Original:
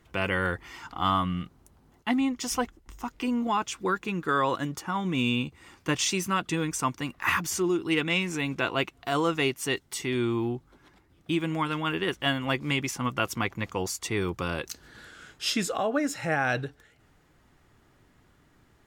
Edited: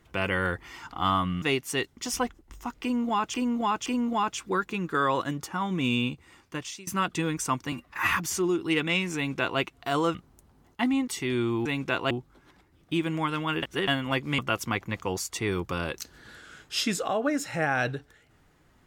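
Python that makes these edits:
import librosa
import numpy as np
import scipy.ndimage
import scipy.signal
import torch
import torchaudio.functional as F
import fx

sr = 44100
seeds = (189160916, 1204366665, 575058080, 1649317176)

y = fx.edit(x, sr, fx.swap(start_s=1.42, length_s=0.93, other_s=9.35, other_length_s=0.55),
    fx.repeat(start_s=3.2, length_s=0.52, count=3),
    fx.fade_out_to(start_s=5.39, length_s=0.82, floor_db=-23.0),
    fx.stretch_span(start_s=7.06, length_s=0.27, factor=1.5),
    fx.duplicate(start_s=8.36, length_s=0.45, to_s=10.48),
    fx.reverse_span(start_s=12.0, length_s=0.25),
    fx.cut(start_s=12.76, length_s=0.32), tone=tone)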